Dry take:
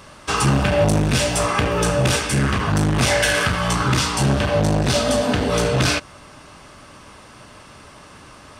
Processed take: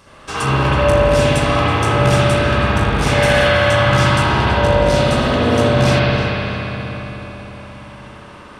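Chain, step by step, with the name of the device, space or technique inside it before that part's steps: dub delay into a spring reverb (darkening echo 0.325 s, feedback 64%, low-pass 2900 Hz, level -7.5 dB; spring tank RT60 3.2 s, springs 60 ms, chirp 25 ms, DRR -9.5 dB); gain -5.5 dB

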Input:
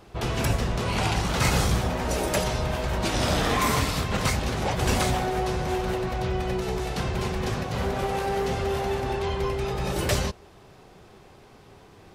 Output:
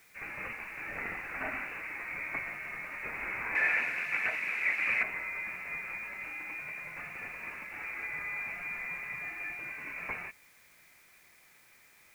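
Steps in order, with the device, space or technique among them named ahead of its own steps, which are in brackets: scrambled radio voice (BPF 390–3200 Hz; inverted band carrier 2800 Hz; white noise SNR 24 dB); 3.55–5.03 weighting filter D; gain -9 dB

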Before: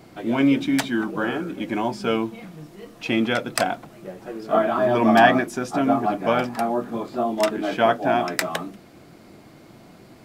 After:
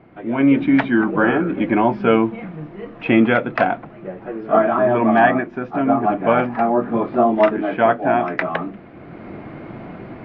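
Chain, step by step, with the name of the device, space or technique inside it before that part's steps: action camera in a waterproof case (LPF 2400 Hz 24 dB/oct; AGC gain up to 14.5 dB; gain -1 dB; AAC 48 kbps 16000 Hz)

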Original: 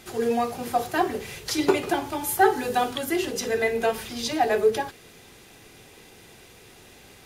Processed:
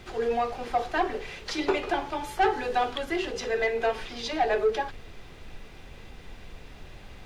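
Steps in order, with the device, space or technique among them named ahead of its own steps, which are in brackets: aircraft cabin announcement (BPF 380–3900 Hz; soft clip -16 dBFS, distortion -15 dB; brown noise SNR 13 dB)

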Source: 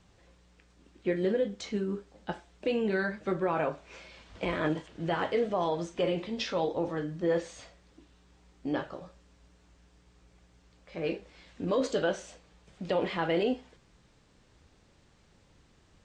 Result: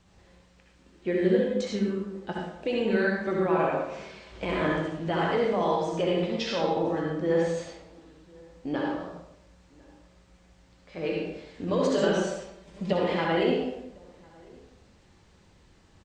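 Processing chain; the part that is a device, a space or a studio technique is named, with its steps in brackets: bathroom (reverb RT60 0.80 s, pre-delay 59 ms, DRR -2 dB); 11.97–12.93 comb 5.1 ms, depth 83%; outdoor echo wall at 180 m, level -26 dB

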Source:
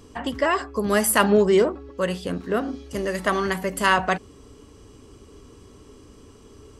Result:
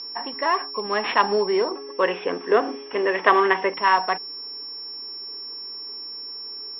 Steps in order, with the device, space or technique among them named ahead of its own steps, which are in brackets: toy sound module (decimation joined by straight lines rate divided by 6×; pulse-width modulation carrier 5400 Hz; speaker cabinet 540–4000 Hz, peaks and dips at 590 Hz -9 dB, 970 Hz +4 dB, 1400 Hz -8 dB); 1.71–3.74 EQ curve 150 Hz 0 dB, 430 Hz +11 dB, 840 Hz +6 dB, 3500 Hz +11 dB, 4900 Hz -12 dB, 10000 Hz +12 dB; gain +3.5 dB

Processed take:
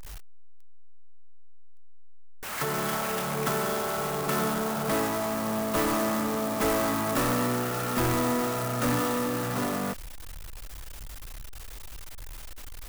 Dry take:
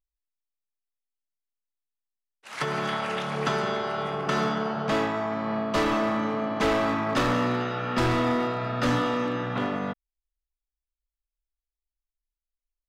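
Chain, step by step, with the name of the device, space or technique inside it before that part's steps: early CD player with a faulty converter (zero-crossing step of -27.5 dBFS; clock jitter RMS 0.061 ms); gain -4 dB

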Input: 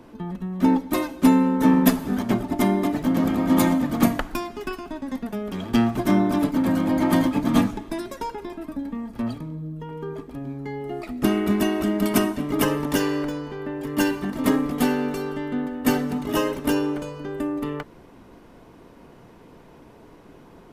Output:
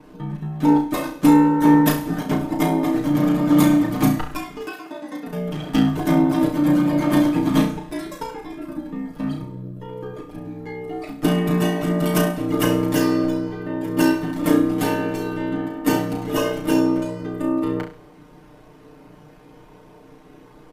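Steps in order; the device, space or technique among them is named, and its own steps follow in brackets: ring-modulated robot voice (ring modulator 31 Hz; comb 6.6 ms, depth 100%); 4.65–5.27 HPF 300 Hz 12 dB/oct; flutter echo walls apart 5.8 m, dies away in 0.36 s

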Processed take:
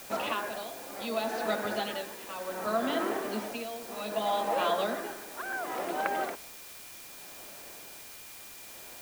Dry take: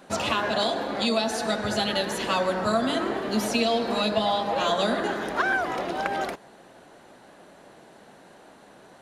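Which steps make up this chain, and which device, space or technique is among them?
shortwave radio (BPF 260–2900 Hz; tremolo 0.66 Hz, depth 79%; whine 2400 Hz -55 dBFS; white noise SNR 13 dB); gain -2.5 dB

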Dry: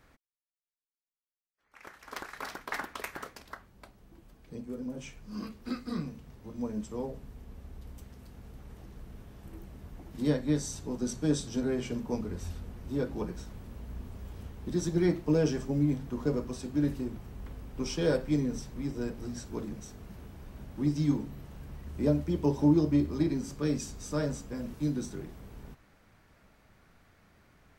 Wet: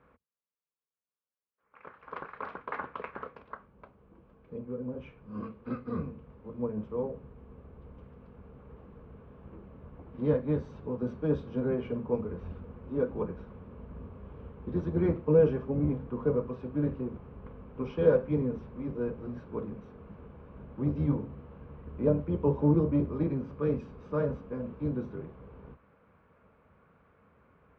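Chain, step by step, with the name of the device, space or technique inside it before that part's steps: sub-octave bass pedal (octaver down 1 oct, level -3 dB; speaker cabinet 74–2300 Hz, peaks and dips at 110 Hz -7 dB, 320 Hz -5 dB, 480 Hz +8 dB, 730 Hz -4 dB, 1100 Hz +5 dB, 1900 Hz -9 dB)

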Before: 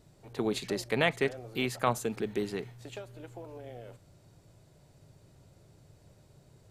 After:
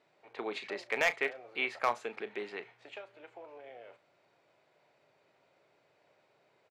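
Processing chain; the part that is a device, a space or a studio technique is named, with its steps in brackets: megaphone (BPF 590–2800 Hz; bell 2300 Hz +6 dB 0.43 oct; hard clip -19 dBFS, distortion -16 dB; doubler 34 ms -13.5 dB)

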